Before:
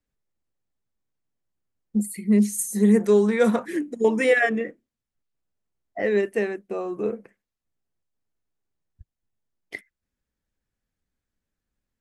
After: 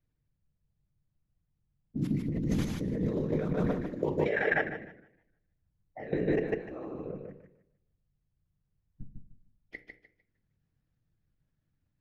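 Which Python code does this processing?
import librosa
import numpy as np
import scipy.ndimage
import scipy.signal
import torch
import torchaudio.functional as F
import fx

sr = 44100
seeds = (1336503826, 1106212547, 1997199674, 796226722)

y = fx.cvsd(x, sr, bps=64000, at=(1.97, 4.21))
y = np.convolve(y, np.full(5, 1.0 / 5))[:len(y)]
y = fx.peak_eq(y, sr, hz=82.0, db=13.0, octaves=0.29)
y = fx.level_steps(y, sr, step_db=21)
y = fx.low_shelf(y, sr, hz=210.0, db=8.0)
y = fx.whisperise(y, sr, seeds[0])
y = fx.hum_notches(y, sr, base_hz=60, count=8)
y = fx.echo_feedback(y, sr, ms=150, feedback_pct=21, wet_db=-4.5)
y = fx.room_shoebox(y, sr, seeds[1], volume_m3=710.0, walls='furnished', distance_m=0.5)
y = fx.over_compress(y, sr, threshold_db=-25.0, ratio=-1.0)
y = fx.echo_warbled(y, sr, ms=154, feedback_pct=33, rate_hz=2.8, cents=155, wet_db=-19.5)
y = y * librosa.db_to_amplitude(-4.0)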